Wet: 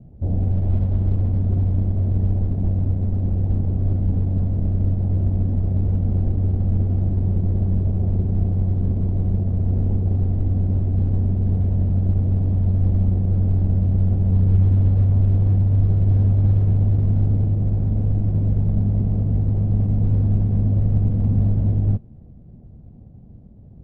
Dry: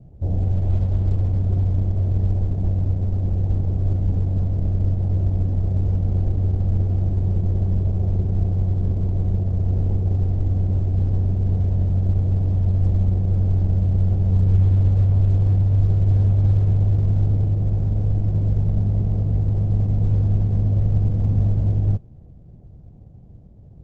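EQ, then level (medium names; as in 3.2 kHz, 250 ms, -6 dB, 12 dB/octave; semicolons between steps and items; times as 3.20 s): distance through air 200 m; peaking EQ 230 Hz +7.5 dB 0.51 oct; 0.0 dB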